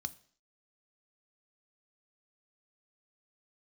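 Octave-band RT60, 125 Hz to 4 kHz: 0.45 s, 0.55 s, 0.55 s, 0.50 s, 0.55 s, 0.60 s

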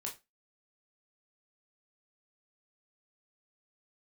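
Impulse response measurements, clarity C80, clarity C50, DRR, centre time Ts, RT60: 20.0 dB, 12.5 dB, -1.5 dB, 19 ms, 0.25 s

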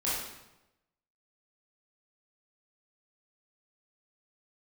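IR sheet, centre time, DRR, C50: 71 ms, -9.0 dB, -0.5 dB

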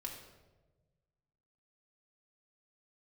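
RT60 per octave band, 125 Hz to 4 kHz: 2.0 s, 1.6 s, 1.5 s, 1.0 s, 0.85 s, 0.75 s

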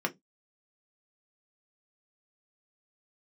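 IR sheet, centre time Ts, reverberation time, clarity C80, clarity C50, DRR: 8 ms, no single decay rate, 34.0 dB, 21.5 dB, 2.0 dB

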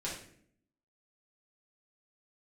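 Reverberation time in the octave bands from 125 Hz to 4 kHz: 0.85 s, 0.90 s, 0.70 s, 0.50 s, 0.60 s, 0.45 s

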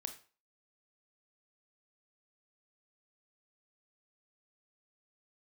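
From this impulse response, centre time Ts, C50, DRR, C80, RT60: 10 ms, 11.0 dB, 7.0 dB, 16.0 dB, 0.40 s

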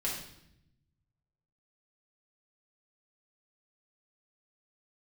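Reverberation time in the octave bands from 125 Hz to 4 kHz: 1.9 s, 1.3 s, 0.80 s, 0.70 s, 0.75 s, 0.70 s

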